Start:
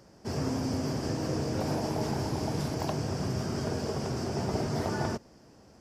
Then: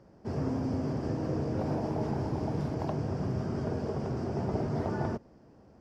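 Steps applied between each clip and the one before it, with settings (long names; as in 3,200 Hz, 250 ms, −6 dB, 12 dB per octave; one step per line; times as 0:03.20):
low-pass filter 1,000 Hz 6 dB per octave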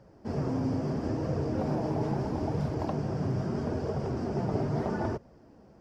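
flanger 0.76 Hz, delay 1.2 ms, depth 6.4 ms, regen −43%
level +5.5 dB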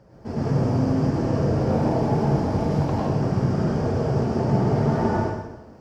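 dense smooth reverb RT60 1 s, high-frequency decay 0.95×, pre-delay 90 ms, DRR −5 dB
level +2.5 dB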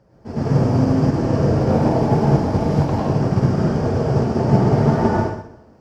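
expander for the loud parts 1.5 to 1, over −37 dBFS
level +7 dB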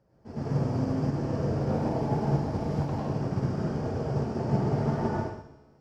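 tuned comb filter 71 Hz, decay 1.4 s, harmonics all, mix 60%
level −4.5 dB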